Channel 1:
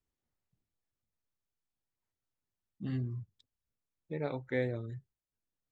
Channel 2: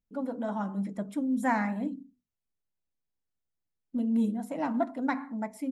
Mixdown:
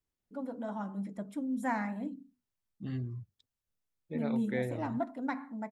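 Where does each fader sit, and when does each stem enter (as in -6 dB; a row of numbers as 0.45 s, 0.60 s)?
-1.5 dB, -5.5 dB; 0.00 s, 0.20 s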